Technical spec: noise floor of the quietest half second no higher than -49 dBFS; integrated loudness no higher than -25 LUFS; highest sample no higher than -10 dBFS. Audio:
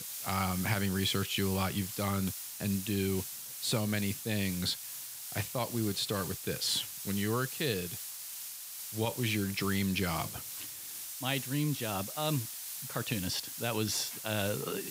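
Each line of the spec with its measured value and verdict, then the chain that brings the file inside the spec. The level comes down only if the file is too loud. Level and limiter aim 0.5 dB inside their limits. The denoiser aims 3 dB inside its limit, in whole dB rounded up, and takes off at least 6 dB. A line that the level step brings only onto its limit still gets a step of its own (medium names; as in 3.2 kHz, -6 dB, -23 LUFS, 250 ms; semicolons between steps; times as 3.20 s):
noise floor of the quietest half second -43 dBFS: fail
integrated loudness -33.5 LUFS: pass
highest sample -16.5 dBFS: pass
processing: noise reduction 9 dB, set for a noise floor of -43 dBFS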